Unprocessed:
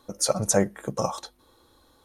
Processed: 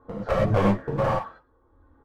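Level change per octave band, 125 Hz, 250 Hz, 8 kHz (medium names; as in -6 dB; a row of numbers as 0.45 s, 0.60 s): +7.5 dB, +3.5 dB, under -25 dB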